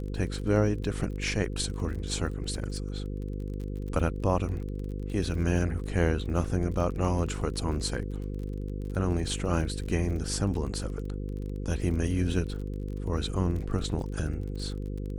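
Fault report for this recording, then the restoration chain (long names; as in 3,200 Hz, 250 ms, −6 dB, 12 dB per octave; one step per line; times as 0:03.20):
mains buzz 50 Hz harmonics 10 −34 dBFS
surface crackle 34 per second −37 dBFS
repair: click removal
hum removal 50 Hz, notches 10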